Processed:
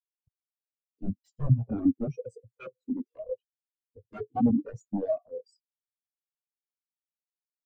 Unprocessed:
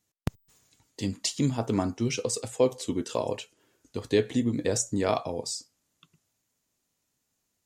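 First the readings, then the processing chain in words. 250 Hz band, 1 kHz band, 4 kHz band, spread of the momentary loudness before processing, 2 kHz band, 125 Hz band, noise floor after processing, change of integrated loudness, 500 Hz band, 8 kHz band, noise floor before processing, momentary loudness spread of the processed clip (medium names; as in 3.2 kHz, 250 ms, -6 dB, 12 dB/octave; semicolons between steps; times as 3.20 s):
0.0 dB, -5.0 dB, under -30 dB, 11 LU, under -15 dB, +1.5 dB, under -85 dBFS, -1.5 dB, -7.5 dB, under -35 dB, -79 dBFS, 19 LU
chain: level rider gain up to 16.5 dB; integer overflow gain 11 dB; spectral contrast expander 4:1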